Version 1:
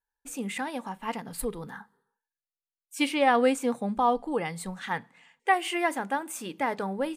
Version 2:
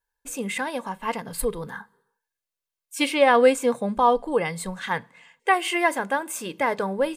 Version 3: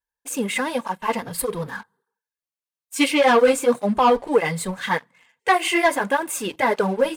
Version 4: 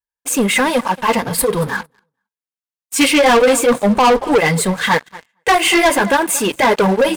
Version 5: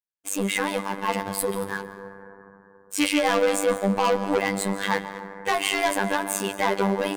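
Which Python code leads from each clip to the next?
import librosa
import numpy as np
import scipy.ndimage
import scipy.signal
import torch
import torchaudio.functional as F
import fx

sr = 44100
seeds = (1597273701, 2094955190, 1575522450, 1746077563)

y1 = x + 0.36 * np.pad(x, (int(1.9 * sr / 1000.0), 0))[:len(x)]
y1 = y1 * librosa.db_to_amplitude(5.0)
y2 = fx.leveller(y1, sr, passes=2)
y2 = fx.flanger_cancel(y2, sr, hz=1.7, depth_ms=7.1)
y3 = fx.echo_feedback(y2, sr, ms=228, feedback_pct=17, wet_db=-22.0)
y3 = fx.leveller(y3, sr, passes=3)
y4 = fx.rev_plate(y3, sr, seeds[0], rt60_s=3.1, hf_ratio=0.25, predelay_ms=120, drr_db=10.0)
y4 = fx.robotise(y4, sr, hz=98.4)
y4 = y4 * librosa.db_to_amplitude(-8.5)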